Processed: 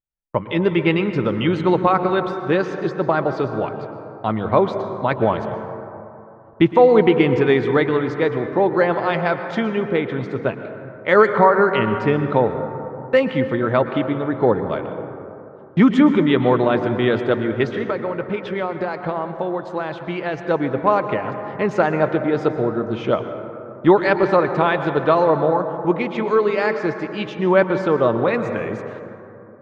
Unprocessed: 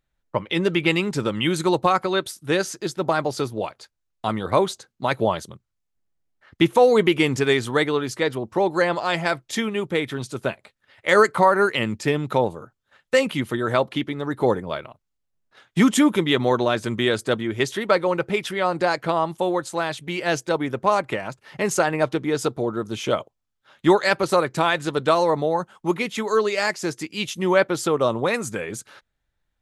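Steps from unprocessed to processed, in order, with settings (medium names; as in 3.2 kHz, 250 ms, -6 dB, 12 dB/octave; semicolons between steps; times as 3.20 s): gate -47 dBFS, range -23 dB; treble shelf 3.9 kHz -11 dB; 17.66–20.39 s: compression, threshold -24 dBFS, peak gain reduction 10.5 dB; distance through air 220 m; reverberation RT60 3.0 s, pre-delay 103 ms, DRR 8 dB; trim +4 dB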